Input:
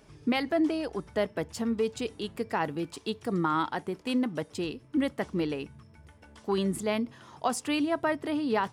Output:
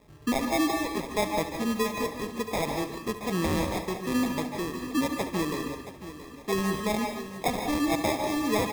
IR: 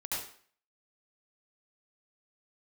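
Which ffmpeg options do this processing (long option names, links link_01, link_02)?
-filter_complex "[0:a]acrusher=samples=30:mix=1:aa=0.000001,aecho=1:1:675|1350|2025:0.224|0.0739|0.0244,asplit=2[link_01][link_02];[1:a]atrim=start_sample=2205,adelay=71[link_03];[link_02][link_03]afir=irnorm=-1:irlink=0,volume=-7.5dB[link_04];[link_01][link_04]amix=inputs=2:normalize=0"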